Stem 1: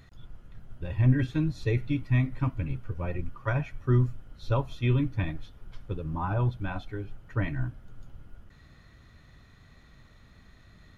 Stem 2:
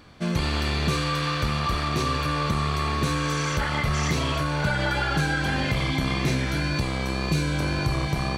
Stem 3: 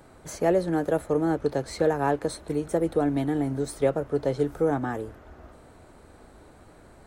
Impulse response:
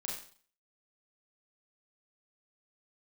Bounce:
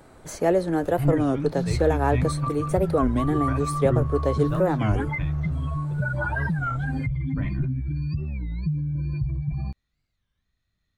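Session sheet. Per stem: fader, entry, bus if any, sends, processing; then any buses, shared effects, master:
-5.5 dB, 0.00 s, no send, three bands expanded up and down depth 70%
-1.0 dB, 1.35 s, no send, spectral contrast enhancement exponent 3.3
+1.5 dB, 0.00 s, no send, none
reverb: none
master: warped record 33 1/3 rpm, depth 250 cents

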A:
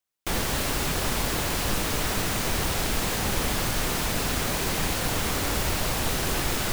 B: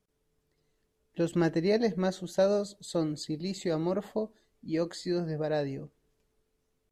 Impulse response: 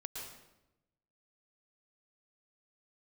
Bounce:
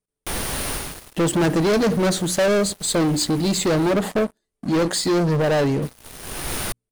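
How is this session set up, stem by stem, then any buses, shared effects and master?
-18.0 dB, 0.00 s, muted 3.93–5.82 s, no send, peaking EQ 7.9 kHz -8.5 dB 0.3 oct; auto duck -16 dB, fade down 0.40 s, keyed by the second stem
+0.5 dB, 0.00 s, no send, none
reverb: none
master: peaking EQ 9.3 kHz +13 dB 0.32 oct; hum notches 60/120/180/240/300 Hz; waveshaping leveller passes 5

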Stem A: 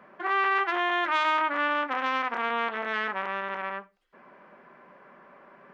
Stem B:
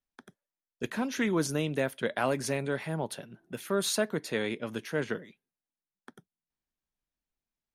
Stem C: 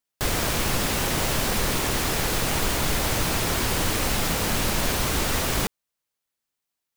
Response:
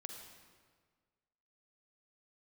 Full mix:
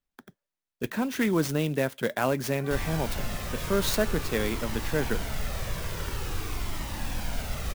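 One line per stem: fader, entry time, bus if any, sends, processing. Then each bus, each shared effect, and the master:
-14.5 dB, 2.40 s, no send, peak limiter -22 dBFS, peak gain reduction 9.5 dB
+2.0 dB, 0.00 s, no send, none
-7.5 dB, 2.50 s, no send, band-stop 4.2 kHz, Q 29; Shepard-style flanger falling 0.47 Hz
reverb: none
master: bass shelf 140 Hz +6 dB; sampling jitter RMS 0.025 ms

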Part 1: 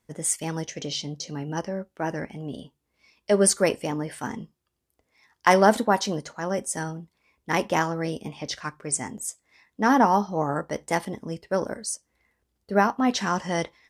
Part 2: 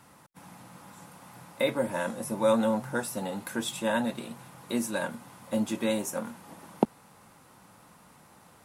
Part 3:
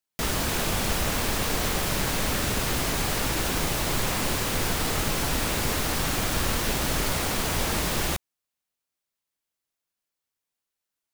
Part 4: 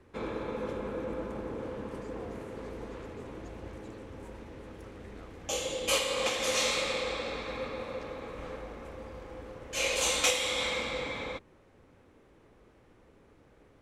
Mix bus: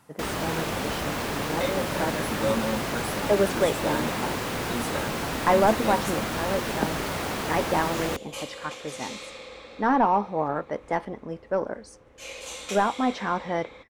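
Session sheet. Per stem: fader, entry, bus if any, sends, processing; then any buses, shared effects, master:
-3.5 dB, 0.00 s, no send, overdrive pedal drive 14 dB, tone 1 kHz, clips at -3.5 dBFS; treble shelf 4.1 kHz -10.5 dB
-3.0 dB, 0.00 s, no send, none
+1.0 dB, 0.00 s, no send, high-pass 170 Hz 6 dB/octave; treble shelf 3.3 kHz -11 dB
-9.5 dB, 2.45 s, no send, none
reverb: none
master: none

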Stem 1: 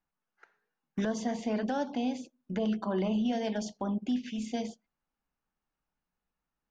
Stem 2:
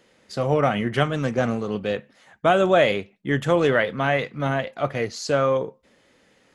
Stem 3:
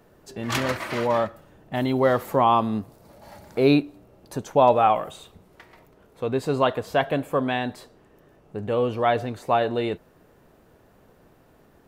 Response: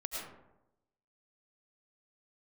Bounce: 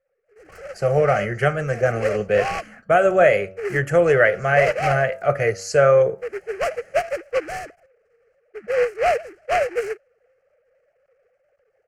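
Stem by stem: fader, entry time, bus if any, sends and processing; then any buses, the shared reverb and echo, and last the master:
-4.5 dB, 0.00 s, muted 3.23–4.14 s, no send, elliptic band-stop 170–1700 Hz
+1.0 dB, 0.45 s, no send, de-hum 94.77 Hz, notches 17
-9.5 dB, 0.00 s, no send, formants replaced by sine waves; delay time shaken by noise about 1.6 kHz, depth 0.11 ms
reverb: none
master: level rider gain up to 11.5 dB; static phaser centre 980 Hz, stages 6; tape noise reduction on one side only decoder only

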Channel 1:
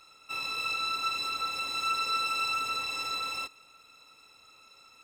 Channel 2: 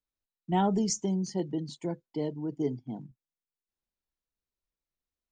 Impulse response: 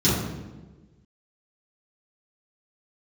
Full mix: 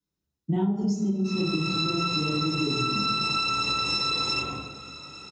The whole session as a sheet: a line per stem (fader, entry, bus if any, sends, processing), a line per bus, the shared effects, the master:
+1.0 dB, 0.95 s, send -10 dB, steep low-pass 8.5 kHz 48 dB/octave; level rider gain up to 5 dB
-7.0 dB, 0.00 s, send -4 dB, none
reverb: on, RT60 1.3 s, pre-delay 3 ms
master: compression 10:1, threshold -23 dBFS, peak gain reduction 20 dB

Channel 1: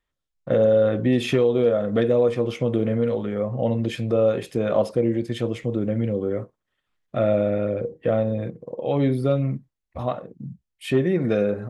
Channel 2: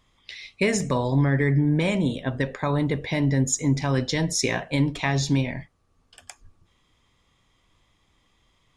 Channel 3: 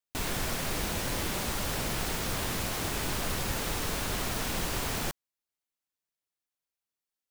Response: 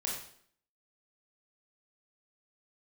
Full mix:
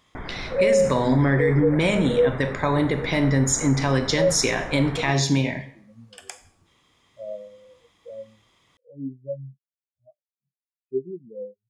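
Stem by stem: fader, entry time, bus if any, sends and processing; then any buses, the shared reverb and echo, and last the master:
+3.0 dB, 0.00 s, no send, spectral contrast expander 4:1
+2.0 dB, 0.00 s, send -9 dB, high-pass 190 Hz 6 dB/octave
+1.5 dB, 0.00 s, no send, steep low-pass 2.2 kHz 96 dB/octave; peak limiter -27.5 dBFS, peak gain reduction 6.5 dB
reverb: on, RT60 0.60 s, pre-delay 20 ms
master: peak limiter -10.5 dBFS, peak gain reduction 8 dB

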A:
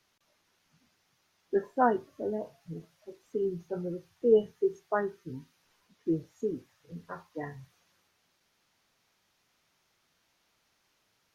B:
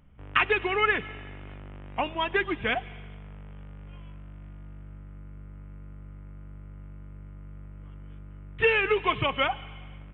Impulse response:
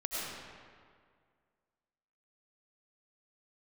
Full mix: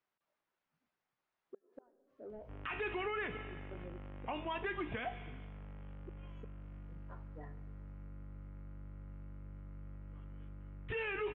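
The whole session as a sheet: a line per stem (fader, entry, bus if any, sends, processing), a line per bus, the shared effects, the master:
-16.5 dB, 0.00 s, send -18 dB, inverted gate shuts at -22 dBFS, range -36 dB; overdrive pedal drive 11 dB, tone 1.4 kHz, clips at -23.5 dBFS
-1.0 dB, 2.30 s, no send, feedback comb 60 Hz, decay 0.23 s, harmonics all, mix 60%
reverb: on, RT60 2.0 s, pre-delay 60 ms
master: low-pass 2.5 kHz 6 dB/octave; peak limiter -30.5 dBFS, peak gain reduction 15 dB

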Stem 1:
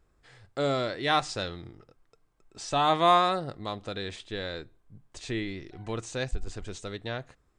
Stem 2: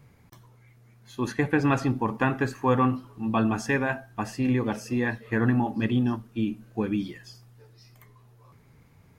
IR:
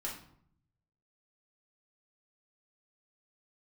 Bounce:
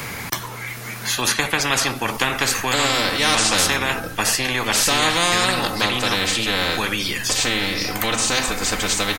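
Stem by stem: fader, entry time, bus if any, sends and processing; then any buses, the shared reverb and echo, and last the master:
+1.5 dB, 2.15 s, send -5 dB, comb 3.9 ms, depth 91%
-0.5 dB, 0.00 s, no send, tilt shelf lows -8.5 dB; three bands compressed up and down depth 40%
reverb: on, RT60 0.65 s, pre-delay 5 ms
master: spectrum-flattening compressor 4:1

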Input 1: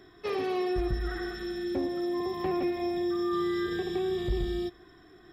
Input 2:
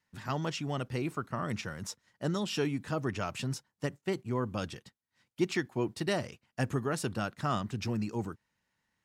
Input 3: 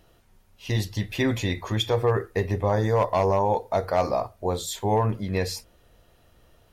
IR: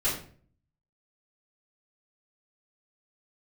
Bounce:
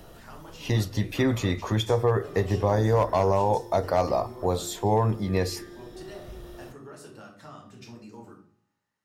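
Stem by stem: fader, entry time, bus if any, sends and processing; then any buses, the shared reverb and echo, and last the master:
-11.5 dB, 2.00 s, no send, none
-6.0 dB, 0.00 s, send -3.5 dB, high-pass 350 Hz 6 dB/octave; compression 5:1, threshold -40 dBFS, peak gain reduction 12.5 dB
+3.0 dB, 0.00 s, no send, three bands compressed up and down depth 40%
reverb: on, RT60 0.45 s, pre-delay 3 ms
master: peaking EQ 2.5 kHz -4.5 dB 1.2 oct; feedback comb 55 Hz, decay 1.7 s, harmonics all, mix 30%

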